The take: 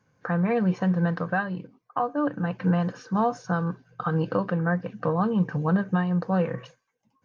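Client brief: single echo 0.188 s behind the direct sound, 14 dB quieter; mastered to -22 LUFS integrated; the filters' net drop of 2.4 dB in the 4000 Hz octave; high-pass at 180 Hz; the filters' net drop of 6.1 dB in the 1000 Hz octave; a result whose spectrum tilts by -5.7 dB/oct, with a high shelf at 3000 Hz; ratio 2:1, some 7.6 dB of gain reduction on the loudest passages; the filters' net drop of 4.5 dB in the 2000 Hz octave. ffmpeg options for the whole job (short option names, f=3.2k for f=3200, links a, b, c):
-af "highpass=180,equalizer=f=1k:t=o:g=-8.5,equalizer=f=2k:t=o:g=-3,highshelf=f=3k:g=7,equalizer=f=4k:t=o:g=-7.5,acompressor=threshold=-36dB:ratio=2,aecho=1:1:188:0.2,volume=14dB"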